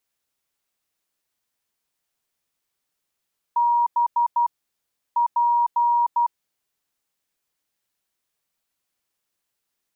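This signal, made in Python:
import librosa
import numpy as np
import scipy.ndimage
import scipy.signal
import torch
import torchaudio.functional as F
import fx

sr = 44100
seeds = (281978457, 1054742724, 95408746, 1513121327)

y = fx.morse(sr, text='B P', wpm=12, hz=951.0, level_db=-16.0)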